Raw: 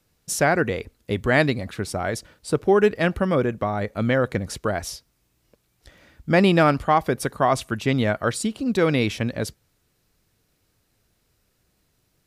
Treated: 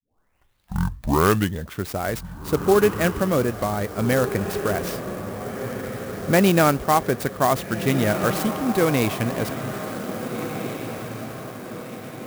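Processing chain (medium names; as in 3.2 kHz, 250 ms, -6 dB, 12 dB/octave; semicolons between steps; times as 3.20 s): tape start-up on the opening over 1.92 s; on a send: echo that smears into a reverb 1679 ms, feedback 51%, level -8.5 dB; on the sum: sampling jitter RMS 0.041 ms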